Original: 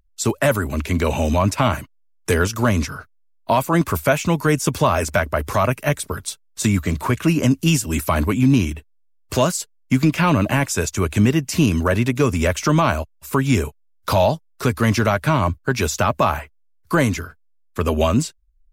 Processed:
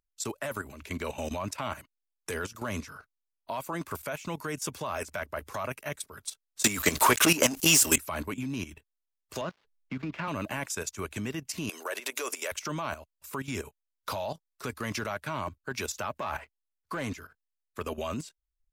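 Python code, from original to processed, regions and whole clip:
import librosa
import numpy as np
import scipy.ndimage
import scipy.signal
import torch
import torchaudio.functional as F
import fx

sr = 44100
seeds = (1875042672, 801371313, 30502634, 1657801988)

y = fx.chain(x, sr, fx.bass_treble(bass_db=-10, treble_db=7),
    fx.leveller(passes=3),
    fx.env_flatten(amount_pct=70), at=(6.64, 7.96))
y = fx.chain(y, sr, fx.dead_time(dead_ms=0.08),
    fx.air_absorb(metres=240.0),
    fx.band_squash(depth_pct=40), at=(9.41, 10.28))
y = fx.chain(y, sr, fx.transient(attack_db=-3, sustain_db=7),
    fx.highpass(hz=390.0, slope=24),
    fx.high_shelf(hz=4500.0, db=9.0), at=(11.69, 12.52))
y = fx.chain(y, sr, fx.high_shelf(hz=8400.0, db=-10.5),
    fx.leveller(passes=1), at=(16.18, 17.14))
y = fx.low_shelf(y, sr, hz=280.0, db=-10.5)
y = fx.level_steps(y, sr, step_db=13)
y = y * 10.0 ** (-7.0 / 20.0)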